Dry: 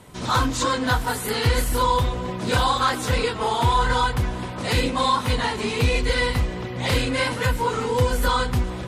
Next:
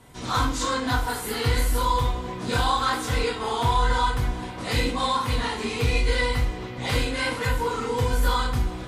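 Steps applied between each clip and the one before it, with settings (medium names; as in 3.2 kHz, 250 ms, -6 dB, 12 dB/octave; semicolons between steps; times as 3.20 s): reverberation, pre-delay 3 ms, DRR -1 dB; trim -6.5 dB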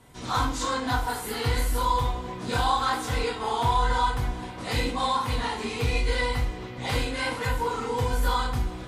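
dynamic bell 820 Hz, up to +5 dB, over -39 dBFS, Q 2.8; trim -3 dB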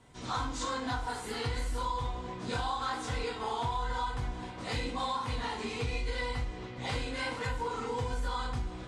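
low-pass 8.9 kHz 24 dB/octave; compression 4:1, threshold -25 dBFS, peak gain reduction 6.5 dB; trim -5 dB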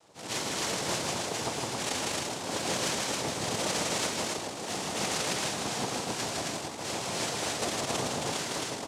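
rattle on loud lows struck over -44 dBFS, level -28 dBFS; noise-vocoded speech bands 2; loudspeakers at several distances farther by 54 m -3 dB, 92 m -2 dB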